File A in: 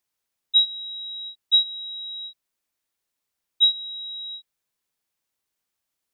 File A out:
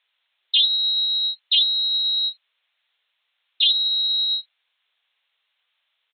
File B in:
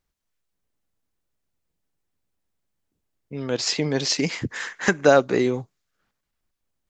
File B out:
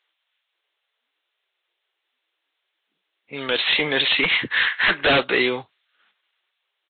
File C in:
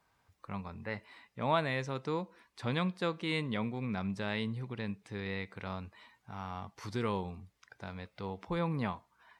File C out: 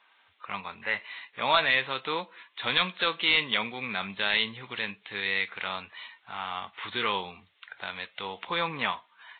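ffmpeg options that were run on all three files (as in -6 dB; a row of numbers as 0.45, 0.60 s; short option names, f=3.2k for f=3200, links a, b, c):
-af "aderivative,aresample=8000,aeval=exprs='0.1*sin(PI/2*5.01*val(0)/0.1)':c=same,aresample=44100,volume=7.5dB" -ar 44100 -c:a libvorbis -b:a 32k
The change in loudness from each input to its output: +4.0, +3.5, +8.0 LU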